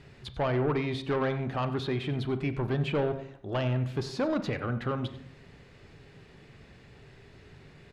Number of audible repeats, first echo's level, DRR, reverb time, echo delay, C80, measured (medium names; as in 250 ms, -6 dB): 1, -17.0 dB, 10.0 dB, 0.75 s, 93 ms, 13.5 dB